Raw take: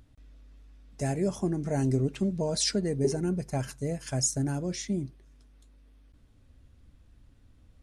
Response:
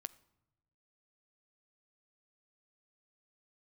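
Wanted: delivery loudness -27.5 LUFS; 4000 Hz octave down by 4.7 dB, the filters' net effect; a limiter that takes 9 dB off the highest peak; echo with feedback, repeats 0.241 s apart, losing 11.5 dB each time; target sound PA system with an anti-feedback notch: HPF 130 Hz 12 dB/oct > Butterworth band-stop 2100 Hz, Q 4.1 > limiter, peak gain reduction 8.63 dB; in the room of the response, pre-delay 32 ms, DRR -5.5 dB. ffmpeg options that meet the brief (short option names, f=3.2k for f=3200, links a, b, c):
-filter_complex "[0:a]equalizer=f=4k:t=o:g=-6.5,alimiter=limit=-23.5dB:level=0:latency=1,aecho=1:1:241|482|723:0.266|0.0718|0.0194,asplit=2[a][b];[1:a]atrim=start_sample=2205,adelay=32[c];[b][c]afir=irnorm=-1:irlink=0,volume=9dB[d];[a][d]amix=inputs=2:normalize=0,highpass=130,asuperstop=centerf=2100:order=8:qfactor=4.1,volume=3.5dB,alimiter=limit=-18.5dB:level=0:latency=1"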